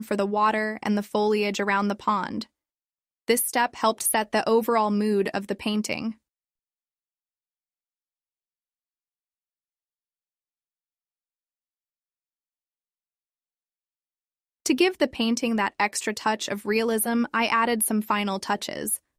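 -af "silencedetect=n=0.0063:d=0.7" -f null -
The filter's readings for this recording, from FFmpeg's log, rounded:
silence_start: 2.44
silence_end: 3.28 | silence_duration: 0.84
silence_start: 6.12
silence_end: 14.66 | silence_duration: 8.53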